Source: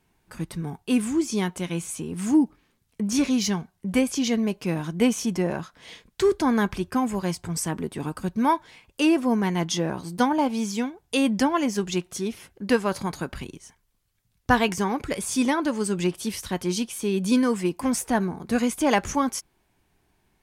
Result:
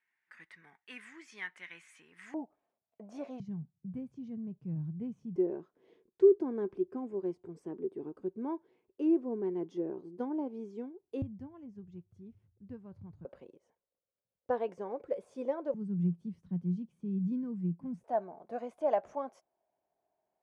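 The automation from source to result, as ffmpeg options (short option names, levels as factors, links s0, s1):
-af "asetnsamples=n=441:p=0,asendcmd='2.34 bandpass f 660;3.4 bandpass f 140;5.36 bandpass f 380;11.22 bandpass f 100;13.25 bandpass f 530;15.74 bandpass f 170;18.04 bandpass f 640',bandpass=f=1900:t=q:w=6.5:csg=0"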